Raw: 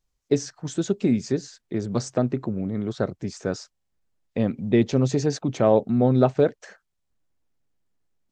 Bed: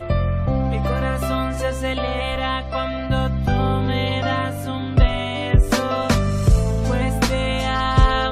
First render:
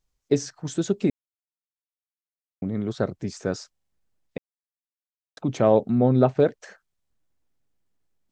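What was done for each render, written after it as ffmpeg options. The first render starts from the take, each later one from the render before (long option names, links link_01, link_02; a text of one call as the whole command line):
ffmpeg -i in.wav -filter_complex "[0:a]asettb=1/sr,asplit=3[link_01][link_02][link_03];[link_01]atrim=end=5.954[link_04];[link_02]atrim=start=5.95:end=6.4,asetpts=PTS-STARTPTS,afade=type=in:duration=0.004:curve=qsin,afade=type=out:start_time=0.446:duration=0.004:curve=qsin,lowpass=frequency=3300:poles=1[link_05];[link_03]atrim=start=6.396[link_06];[link_04][link_05]acrossfade=duration=0.004:curve1=hsin:curve2=qsin[link_07];[link_07][link_06]acrossfade=duration=0.004:curve1=qsin:curve2=hsin,asplit=5[link_08][link_09][link_10][link_11][link_12];[link_08]atrim=end=1.1,asetpts=PTS-STARTPTS,afade=type=out:start_time=1.096:duration=0.004:curve=hsin[link_13];[link_09]atrim=start=1.1:end=2.62,asetpts=PTS-STARTPTS,volume=0[link_14];[link_10]atrim=start=2.62:end=4.38,asetpts=PTS-STARTPTS,afade=type=in:duration=0.004:curve=hsin,afade=type=out:start_time=1.756:duration=0.004:curve=hsin[link_15];[link_11]atrim=start=4.38:end=5.37,asetpts=PTS-STARTPTS,volume=0[link_16];[link_12]atrim=start=5.37,asetpts=PTS-STARTPTS,afade=type=in:duration=0.004:curve=hsin[link_17];[link_13][link_14][link_15][link_16][link_17]concat=n=5:v=0:a=1" out.wav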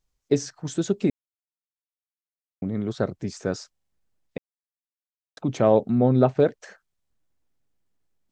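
ffmpeg -i in.wav -af anull out.wav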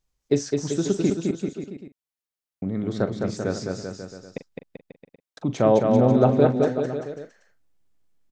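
ffmpeg -i in.wav -filter_complex "[0:a]asplit=2[link_01][link_02];[link_02]adelay=42,volume=-13.5dB[link_03];[link_01][link_03]amix=inputs=2:normalize=0,aecho=1:1:210|388.5|540.2|669.2|778.8:0.631|0.398|0.251|0.158|0.1" out.wav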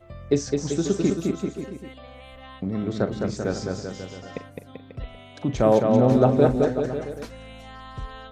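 ffmpeg -i in.wav -i bed.wav -filter_complex "[1:a]volume=-21dB[link_01];[0:a][link_01]amix=inputs=2:normalize=0" out.wav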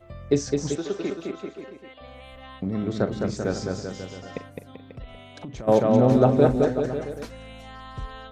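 ffmpeg -i in.wav -filter_complex "[0:a]asettb=1/sr,asplit=3[link_01][link_02][link_03];[link_01]atrim=end=0.754[link_04];[link_02]atrim=start=0.75:end=2.01,asetpts=PTS-STARTPTS,afade=type=in:duration=0.004:curve=qsin,afade=type=out:start_time=1.256:duration=0.004:curve=qsin,acrossover=split=370 4500:gain=0.158 1 0.0891[link_05][link_06][link_07];[link_05][link_06][link_07]amix=inputs=3:normalize=0[link_08];[link_03]atrim=start=2.006[link_09];[link_04][link_08]acrossfade=duration=0.004:curve1=hsin:curve2=qsin[link_10];[link_10][link_09]acrossfade=duration=0.004:curve1=qsin:curve2=hsin,asplit=3[link_11][link_12][link_13];[link_11]afade=type=out:start_time=4.68:duration=0.02[link_14];[link_12]acompressor=threshold=-34dB:ratio=6:attack=3.2:release=140:knee=1:detection=peak,afade=type=in:start_time=4.68:duration=0.02,afade=type=out:start_time=5.67:duration=0.02[link_15];[link_13]afade=type=in:start_time=5.67:duration=0.02[link_16];[link_14][link_15][link_16]amix=inputs=3:normalize=0" out.wav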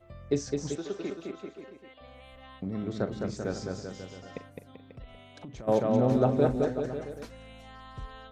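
ffmpeg -i in.wav -af "volume=-6.5dB" out.wav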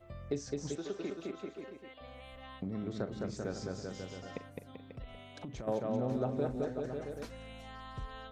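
ffmpeg -i in.wav -af "acompressor=threshold=-38dB:ratio=2" out.wav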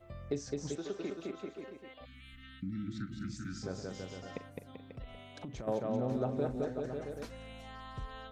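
ffmpeg -i in.wav -filter_complex "[0:a]asplit=3[link_01][link_02][link_03];[link_01]afade=type=out:start_time=2.04:duration=0.02[link_04];[link_02]asuperstop=centerf=650:order=20:qfactor=0.69,afade=type=in:start_time=2.04:duration=0.02,afade=type=out:start_time=3.62:duration=0.02[link_05];[link_03]afade=type=in:start_time=3.62:duration=0.02[link_06];[link_04][link_05][link_06]amix=inputs=3:normalize=0" out.wav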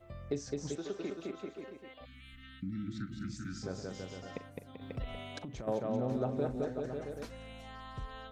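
ffmpeg -i in.wav -filter_complex "[0:a]asettb=1/sr,asplit=3[link_01][link_02][link_03];[link_01]atrim=end=4.814[link_04];[link_02]atrim=start=4.81:end=5.39,asetpts=PTS-STARTPTS,afade=type=in:duration=0.004:curve=qsin,afade=type=out:start_time=0.576:duration=0.004:curve=qsin,acontrast=78[link_05];[link_03]atrim=start=5.386[link_06];[link_04][link_05]acrossfade=duration=0.004:curve1=hsin:curve2=qsin[link_07];[link_07][link_06]acrossfade=duration=0.004:curve1=qsin:curve2=hsin" out.wav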